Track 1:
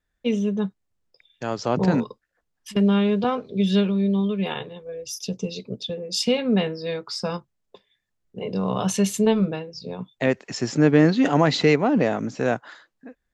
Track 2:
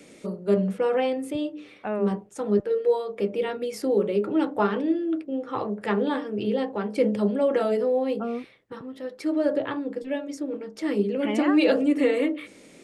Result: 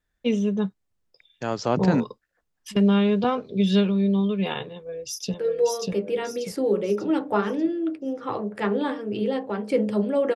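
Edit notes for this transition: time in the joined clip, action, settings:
track 1
4.70–5.34 s: echo throw 590 ms, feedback 40%, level -1 dB
5.34 s: go over to track 2 from 2.60 s

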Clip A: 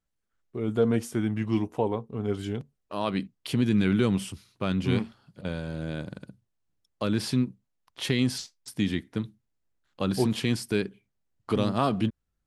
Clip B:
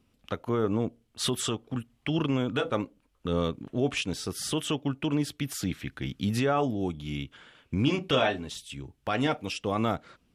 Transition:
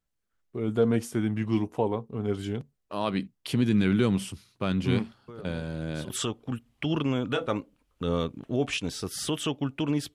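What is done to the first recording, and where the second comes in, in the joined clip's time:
clip A
5.28 s: add clip B from 0.52 s 0.82 s -17 dB
6.10 s: go over to clip B from 1.34 s

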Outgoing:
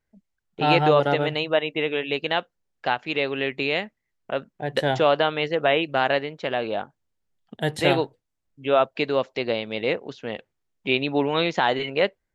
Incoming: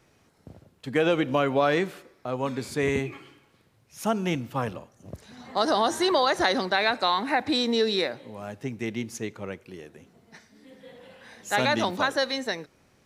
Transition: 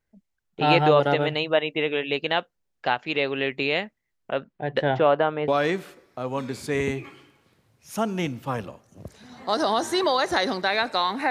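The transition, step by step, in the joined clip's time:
outgoing
4.35–5.48 s: low-pass 5.2 kHz -> 1.2 kHz
5.48 s: go over to incoming from 1.56 s

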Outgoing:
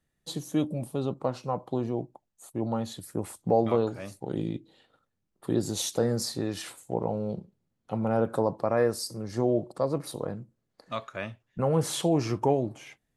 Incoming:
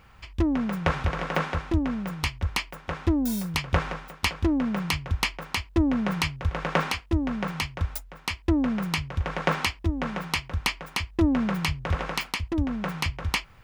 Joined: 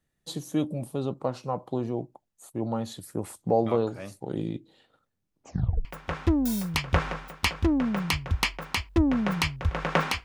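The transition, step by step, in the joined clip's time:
outgoing
5.28 s: tape stop 0.57 s
5.85 s: go over to incoming from 2.65 s

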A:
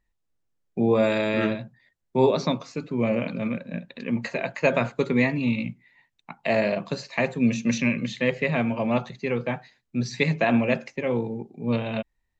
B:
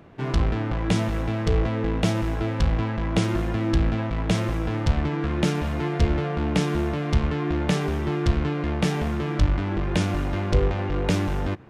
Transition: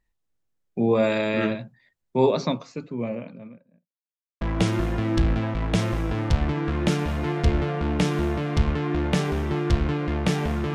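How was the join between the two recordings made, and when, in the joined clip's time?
A
2.28–3.95 s: studio fade out
3.95–4.41 s: mute
4.41 s: go over to B from 2.97 s

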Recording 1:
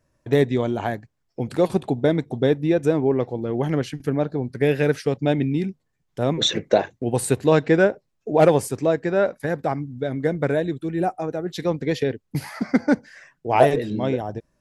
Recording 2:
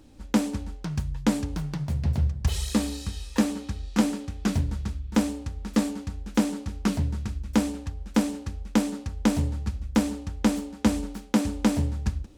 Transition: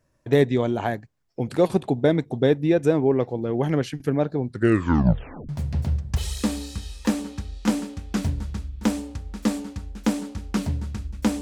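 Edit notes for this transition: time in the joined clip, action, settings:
recording 1
4.47 s: tape stop 1.02 s
5.49 s: go over to recording 2 from 1.80 s

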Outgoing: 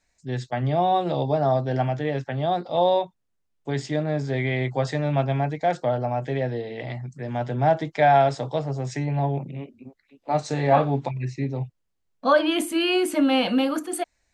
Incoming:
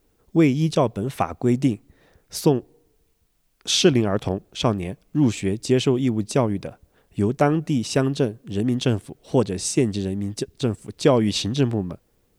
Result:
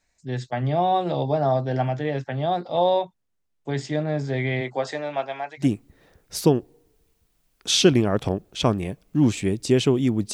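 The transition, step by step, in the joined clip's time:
outgoing
4.60–5.67 s: high-pass 210 Hz -> 1.1 kHz
5.62 s: go over to incoming from 1.62 s, crossfade 0.10 s

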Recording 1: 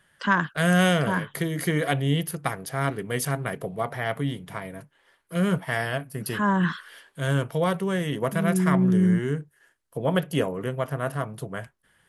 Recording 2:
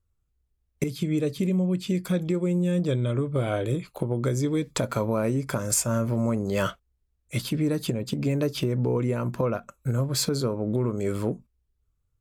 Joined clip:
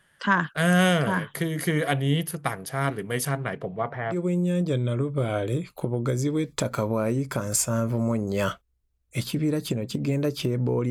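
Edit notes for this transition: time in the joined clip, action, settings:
recording 1
3.29–4.19 s: low-pass 7.3 kHz -> 1.3 kHz
4.13 s: go over to recording 2 from 2.31 s, crossfade 0.12 s

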